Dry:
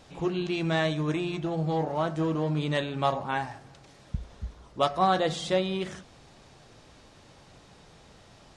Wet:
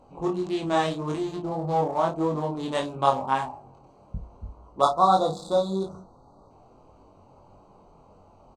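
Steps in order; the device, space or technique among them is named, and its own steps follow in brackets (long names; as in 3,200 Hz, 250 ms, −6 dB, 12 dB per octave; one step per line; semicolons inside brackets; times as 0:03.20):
adaptive Wiener filter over 25 samples
double-tracked vocal (double-tracking delay 31 ms −8 dB; chorus effect 1.7 Hz, delay 20 ms, depth 3.2 ms)
octave-band graphic EQ 125/1,000/2,000/8,000 Hz −5/+9/−5/+9 dB
gain on a spectral selection 0:04.81–0:06.51, 1,500–3,400 Hz −24 dB
level +3.5 dB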